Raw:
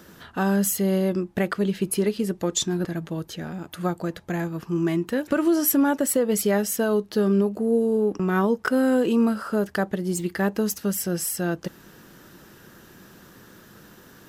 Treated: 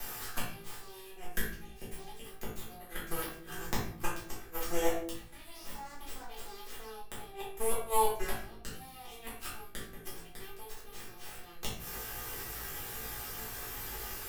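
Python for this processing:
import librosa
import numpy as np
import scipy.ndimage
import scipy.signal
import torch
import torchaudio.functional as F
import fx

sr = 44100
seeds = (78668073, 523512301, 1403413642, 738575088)

p1 = fx.lower_of_two(x, sr, delay_ms=2.5)
p2 = librosa.effects.preemphasis(p1, coef=0.9, zi=[0.0])
p3 = fx.over_compress(p2, sr, threshold_db=-39.0, ratio=-1.0)
p4 = p2 + (p3 * 10.0 ** (-0.5 / 20.0))
p5 = fx.env_phaser(p4, sr, low_hz=380.0, high_hz=2700.0, full_db=-24.5)
p6 = fx.cheby_harmonics(p5, sr, harmonics=(3, 8), levels_db=(-15, -6), full_scale_db=-13.0)
p7 = fx.gate_flip(p6, sr, shuts_db=-24.0, range_db=-34)
p8 = p7 + fx.room_flutter(p7, sr, wall_m=3.1, rt60_s=0.22, dry=0)
p9 = fx.room_shoebox(p8, sr, seeds[0], volume_m3=55.0, walls='mixed', distance_m=1.6)
p10 = fx.band_squash(p9, sr, depth_pct=40)
y = p10 * 10.0 ** (2.5 / 20.0)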